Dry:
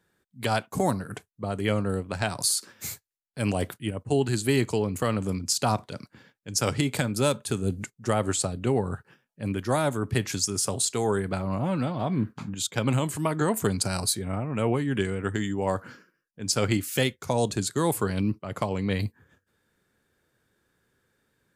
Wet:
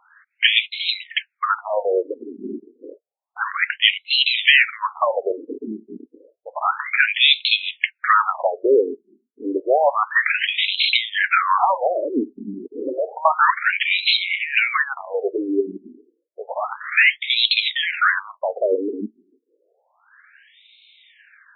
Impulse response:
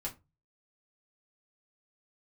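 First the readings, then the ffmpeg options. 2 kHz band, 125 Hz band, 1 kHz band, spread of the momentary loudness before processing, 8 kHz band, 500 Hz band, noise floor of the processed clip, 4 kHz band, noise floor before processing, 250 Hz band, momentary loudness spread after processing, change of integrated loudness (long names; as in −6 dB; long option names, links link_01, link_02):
+17.0 dB, below −25 dB, +10.5 dB, 9 LU, below −40 dB, +5.0 dB, −75 dBFS, +14.5 dB, −79 dBFS, −3.0 dB, 16 LU, +8.5 dB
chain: -af "aderivative,aeval=exprs='0.299*sin(PI/2*5.62*val(0)/0.299)':channel_layout=same,apsyclip=24dB,afftfilt=real='re*between(b*sr/1024,290*pow(3000/290,0.5+0.5*sin(2*PI*0.3*pts/sr))/1.41,290*pow(3000/290,0.5+0.5*sin(2*PI*0.3*pts/sr))*1.41)':imag='im*between(b*sr/1024,290*pow(3000/290,0.5+0.5*sin(2*PI*0.3*pts/sr))/1.41,290*pow(3000/290,0.5+0.5*sin(2*PI*0.3*pts/sr))*1.41)':win_size=1024:overlap=0.75,volume=-4dB"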